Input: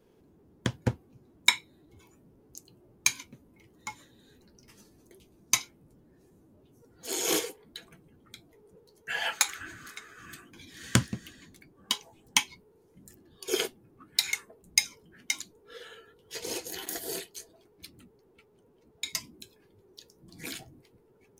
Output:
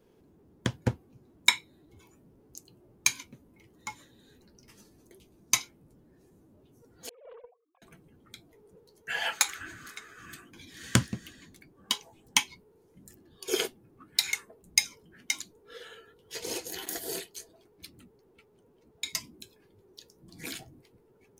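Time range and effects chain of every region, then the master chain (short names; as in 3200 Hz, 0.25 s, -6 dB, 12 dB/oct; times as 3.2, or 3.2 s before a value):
7.09–7.82 sine-wave speech + vocal tract filter a + Doppler distortion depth 0.2 ms
whole clip: dry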